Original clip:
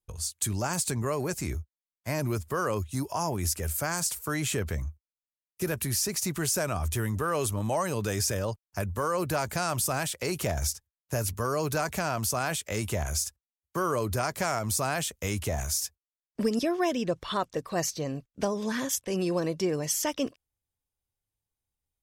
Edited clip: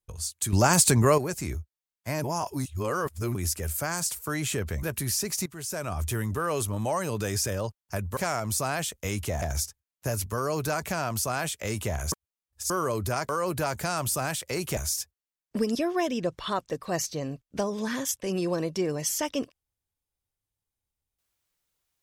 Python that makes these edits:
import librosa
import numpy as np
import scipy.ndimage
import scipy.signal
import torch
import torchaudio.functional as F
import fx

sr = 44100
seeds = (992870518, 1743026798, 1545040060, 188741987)

y = fx.edit(x, sr, fx.clip_gain(start_s=0.53, length_s=0.65, db=9.5),
    fx.reverse_span(start_s=2.24, length_s=1.11),
    fx.cut(start_s=4.83, length_s=0.84),
    fx.fade_in_from(start_s=6.3, length_s=0.56, floor_db=-18.0),
    fx.swap(start_s=9.01, length_s=1.48, other_s=14.36, other_length_s=1.25),
    fx.reverse_span(start_s=13.19, length_s=0.58), tone=tone)